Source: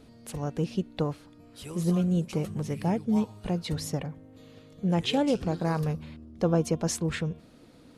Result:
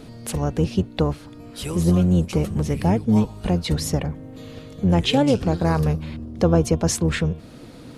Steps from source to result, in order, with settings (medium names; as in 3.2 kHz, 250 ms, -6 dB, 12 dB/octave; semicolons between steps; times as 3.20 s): octave divider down 1 oct, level -5 dB; in parallel at +2 dB: compression, threshold -37 dBFS, peak gain reduction 17 dB; on the sum: trim +5 dB